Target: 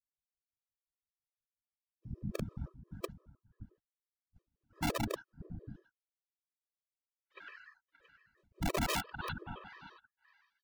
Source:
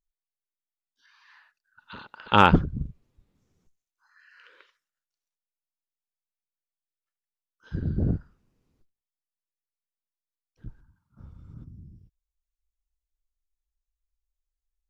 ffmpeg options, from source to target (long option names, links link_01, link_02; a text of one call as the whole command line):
ffmpeg -i in.wav -filter_complex "[0:a]areverse,lowpass=frequency=3000:poles=1,agate=range=-33dB:threshold=-57dB:ratio=3:detection=peak,asplit=2[link_01][link_02];[link_02]alimiter=limit=-13.5dB:level=0:latency=1:release=47,volume=-2.5dB[link_03];[link_01][link_03]amix=inputs=2:normalize=0,acompressor=threshold=-28dB:ratio=10,atempo=1.4,afftfilt=real='hypot(re,im)*cos(2*PI*random(0))':imag='hypot(re,im)*sin(2*PI*random(1))':win_size=512:overlap=0.75,asplit=2[link_04][link_05];[link_05]aecho=0:1:576|673:0.168|0.112[link_06];[link_04][link_06]amix=inputs=2:normalize=0,aeval=exprs='(mod(50.1*val(0)+1,2)-1)/50.1':channel_layout=same,afftfilt=real='re*gt(sin(2*PI*5.8*pts/sr)*(1-2*mod(floor(b*sr/1024/330),2)),0)':imag='im*gt(sin(2*PI*5.8*pts/sr)*(1-2*mod(floor(b*sr/1024/330),2)),0)':win_size=1024:overlap=0.75,volume=10dB" out.wav